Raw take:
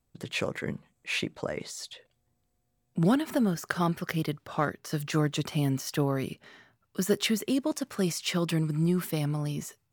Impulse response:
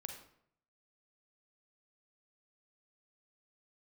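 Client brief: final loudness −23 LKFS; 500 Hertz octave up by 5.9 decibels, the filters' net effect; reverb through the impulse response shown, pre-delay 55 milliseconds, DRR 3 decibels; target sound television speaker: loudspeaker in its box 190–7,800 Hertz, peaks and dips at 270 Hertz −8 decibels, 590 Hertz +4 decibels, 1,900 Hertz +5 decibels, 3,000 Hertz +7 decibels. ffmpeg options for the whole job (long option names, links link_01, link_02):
-filter_complex "[0:a]equalizer=frequency=500:width_type=o:gain=6,asplit=2[link_01][link_02];[1:a]atrim=start_sample=2205,adelay=55[link_03];[link_02][link_03]afir=irnorm=-1:irlink=0,volume=0dB[link_04];[link_01][link_04]amix=inputs=2:normalize=0,highpass=frequency=190:width=0.5412,highpass=frequency=190:width=1.3066,equalizer=frequency=270:width_type=q:width=4:gain=-8,equalizer=frequency=590:width_type=q:width=4:gain=4,equalizer=frequency=1900:width_type=q:width=4:gain=5,equalizer=frequency=3000:width_type=q:width=4:gain=7,lowpass=frequency=7800:width=0.5412,lowpass=frequency=7800:width=1.3066,volume=4dB"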